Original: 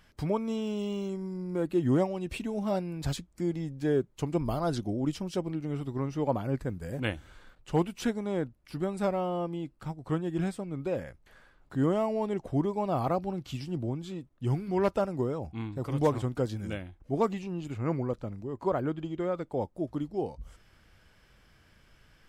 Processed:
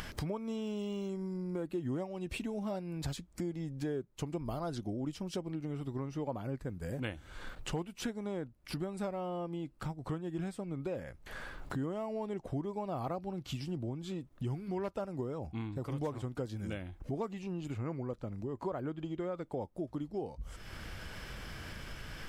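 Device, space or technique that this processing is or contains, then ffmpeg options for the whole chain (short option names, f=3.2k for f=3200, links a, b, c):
upward and downward compression: -af "acompressor=mode=upward:threshold=-39dB:ratio=2.5,acompressor=threshold=-43dB:ratio=4,volume=6dB"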